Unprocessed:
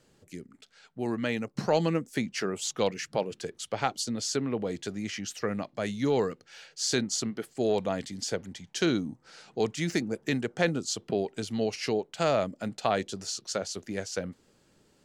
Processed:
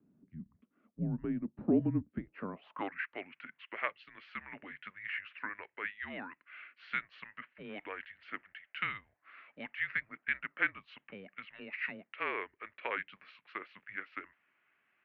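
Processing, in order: mistuned SSB -200 Hz 270–2900 Hz; band-pass sweep 220 Hz -> 2000 Hz, 2.05–3.07; gain +4.5 dB

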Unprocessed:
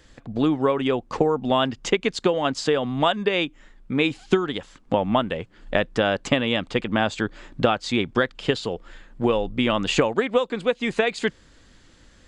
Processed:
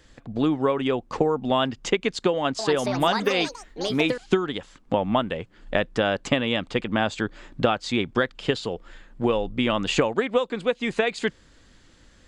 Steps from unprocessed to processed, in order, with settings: 2.31–4.43 echoes that change speed 0.279 s, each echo +5 st, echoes 3, each echo -6 dB; gain -1.5 dB

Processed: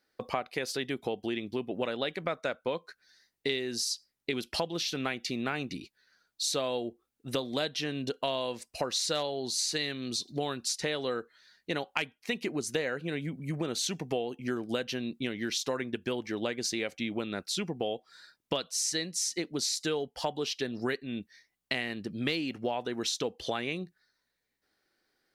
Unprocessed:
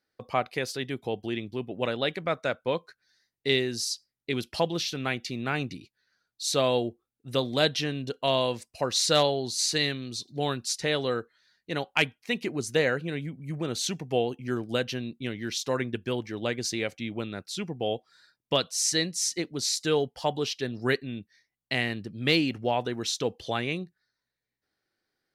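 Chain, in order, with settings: bell 110 Hz -9 dB 0.84 oct; compressor 5:1, threshold -35 dBFS, peak gain reduction 15.5 dB; gain +5.5 dB

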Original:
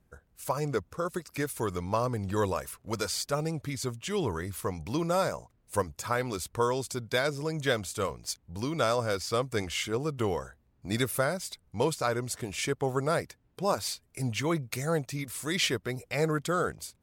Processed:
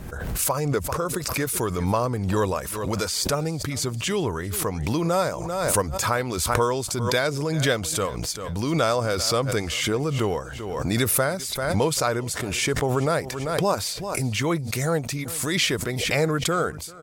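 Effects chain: feedback echo 0.392 s, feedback 22%, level -21.5 dB; backwards sustainer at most 32 dB/s; gain +4.5 dB

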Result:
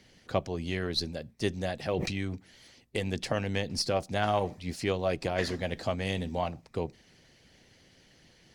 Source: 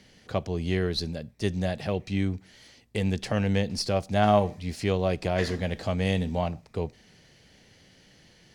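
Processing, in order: on a send at -16.5 dB: reverb RT60 0.20 s, pre-delay 5 ms; on the sum: harmonic-percussive split percussive +9 dB; 1.93–2.35 sustainer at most 29 dB/s; gain -8.5 dB

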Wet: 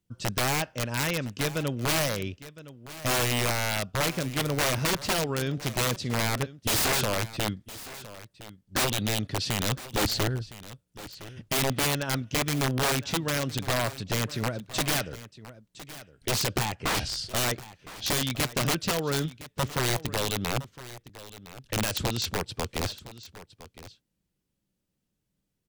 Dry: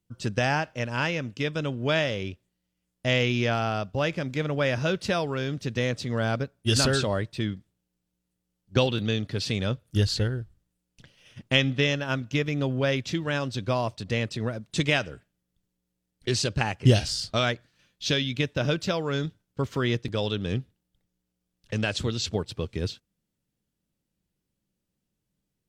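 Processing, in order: wrapped overs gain 20 dB; 16.65–17.26 high shelf 6300 Hz -7 dB; echo 1.012 s -16.5 dB

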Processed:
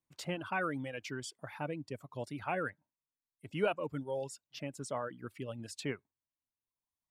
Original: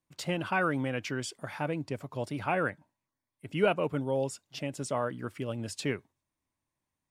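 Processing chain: reverb removal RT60 1.2 s; gain -5.5 dB

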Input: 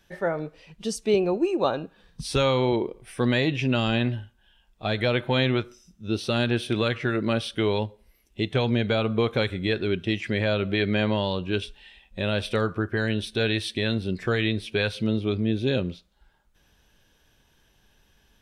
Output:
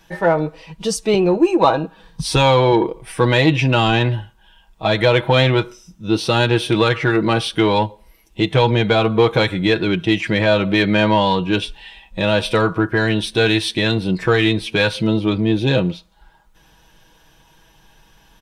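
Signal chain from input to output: bell 920 Hz +8.5 dB 0.44 oct; comb 6.2 ms, depth 59%; in parallel at -6 dB: soft clip -21.5 dBFS, distortion -10 dB; on the sum: gain +5 dB

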